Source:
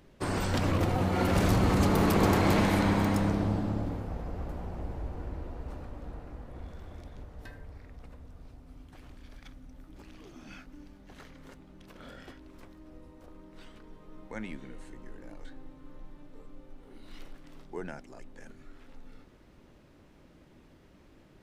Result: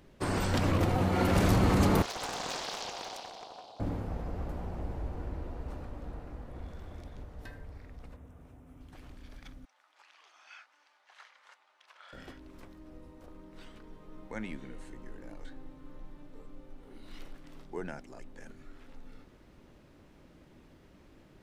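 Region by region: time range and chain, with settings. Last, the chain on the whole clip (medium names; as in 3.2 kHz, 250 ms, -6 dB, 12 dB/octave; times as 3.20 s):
2.02–3.80 s: two resonant band-passes 1.7 kHz, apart 2.4 oct + tilt EQ +4 dB/octave + loudspeaker Doppler distortion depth 0.7 ms
8.16–8.81 s: high-pass 66 Hz + peaking EQ 4.5 kHz -13.5 dB 0.66 oct
9.65–12.13 s: high-pass 840 Hz 24 dB/octave + distance through air 63 m
whole clip: none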